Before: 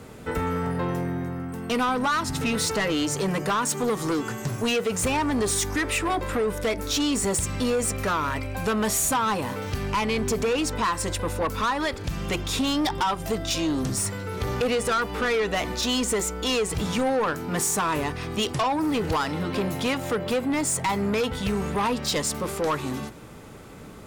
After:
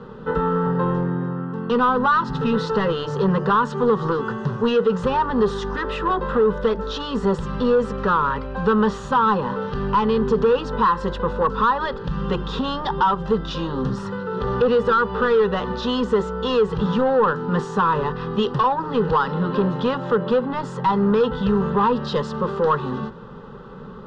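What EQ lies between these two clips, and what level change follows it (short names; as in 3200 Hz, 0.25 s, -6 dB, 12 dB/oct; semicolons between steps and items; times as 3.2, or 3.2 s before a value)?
LPF 3200 Hz 24 dB/oct; fixed phaser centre 450 Hz, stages 8; +8.0 dB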